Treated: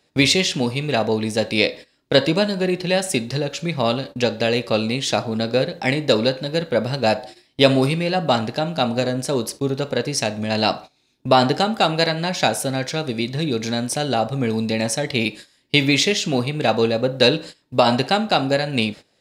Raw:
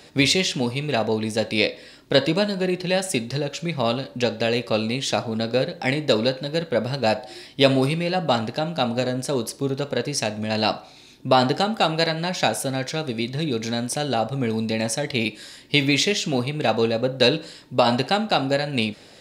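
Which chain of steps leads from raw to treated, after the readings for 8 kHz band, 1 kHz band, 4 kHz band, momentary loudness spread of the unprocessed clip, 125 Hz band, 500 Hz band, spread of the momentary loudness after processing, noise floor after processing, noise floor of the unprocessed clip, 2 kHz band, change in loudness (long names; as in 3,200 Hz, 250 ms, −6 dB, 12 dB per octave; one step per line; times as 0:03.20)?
+2.5 dB, +2.5 dB, +2.5 dB, 7 LU, +2.5 dB, +2.5 dB, 7 LU, −64 dBFS, −48 dBFS, +2.5 dB, +2.5 dB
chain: noise gate −36 dBFS, range −19 dB
level +2.5 dB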